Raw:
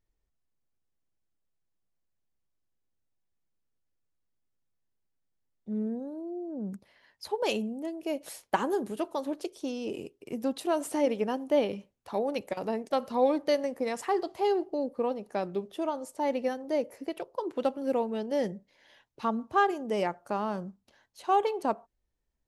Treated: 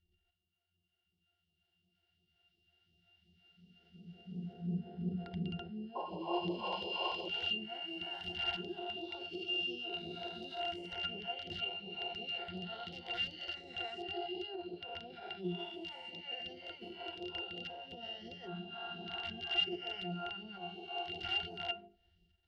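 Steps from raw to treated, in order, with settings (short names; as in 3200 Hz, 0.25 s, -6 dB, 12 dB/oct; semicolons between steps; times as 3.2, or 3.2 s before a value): spectral swells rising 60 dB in 2.36 s; recorder AGC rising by 5.4 dB/s; low shelf 220 Hz -3.5 dB; notches 50/100/150/200/250/300/350/400/450 Hz; wrapped overs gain 16 dB; transient shaper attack -5 dB, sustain +10 dB; compressor 4:1, threshold -41 dBFS, peak gain reduction 18.5 dB; band shelf 3300 Hz +15.5 dB; octave resonator F, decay 0.16 s; painted sound noise, 5.95–7.29, 320–1100 Hz -50 dBFS; phaser stages 2, 2.8 Hz, lowest notch 160–1300 Hz; reverb RT60 0.65 s, pre-delay 6 ms, DRR 14.5 dB; gain +12 dB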